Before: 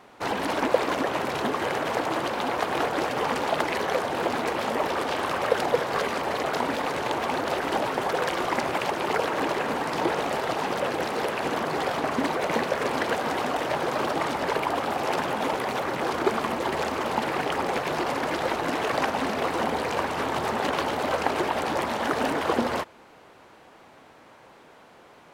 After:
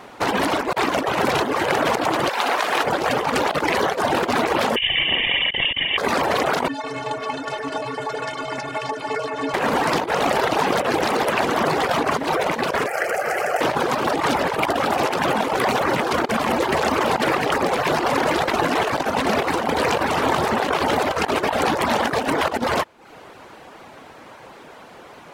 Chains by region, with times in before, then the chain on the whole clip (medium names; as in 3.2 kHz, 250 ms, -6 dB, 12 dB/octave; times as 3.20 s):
2.29–2.84 s: high-pass 960 Hz 6 dB/octave + flutter echo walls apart 10.1 m, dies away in 0.56 s
4.76–5.98 s: static phaser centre 1.4 kHz, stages 8 + doubling 44 ms -7 dB + frequency inversion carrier 3.5 kHz
6.68–9.54 s: low-pass 9.2 kHz 24 dB/octave + inharmonic resonator 130 Hz, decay 0.25 s, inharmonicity 0.03
12.86–13.61 s: high-pass 370 Hz 6 dB/octave + static phaser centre 990 Hz, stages 6
whole clip: reverb removal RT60 0.52 s; compressor with a negative ratio -29 dBFS, ratio -0.5; trim +9 dB